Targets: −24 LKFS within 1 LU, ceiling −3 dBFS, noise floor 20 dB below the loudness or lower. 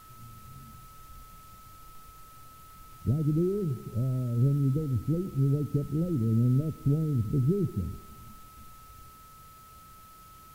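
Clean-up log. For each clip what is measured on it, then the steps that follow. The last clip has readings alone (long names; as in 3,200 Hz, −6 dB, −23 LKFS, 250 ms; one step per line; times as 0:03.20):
interfering tone 1,300 Hz; level of the tone −51 dBFS; integrated loudness −28.5 LKFS; sample peak −16.0 dBFS; target loudness −24.0 LKFS
→ notch filter 1,300 Hz, Q 30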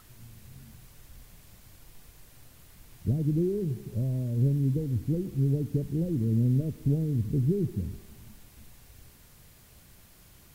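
interfering tone none found; integrated loudness −28.5 LKFS; sample peak −16.5 dBFS; target loudness −24.0 LKFS
→ level +4.5 dB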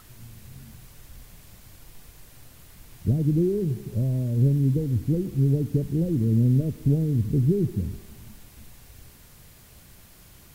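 integrated loudness −24.0 LKFS; sample peak −12.0 dBFS; background noise floor −51 dBFS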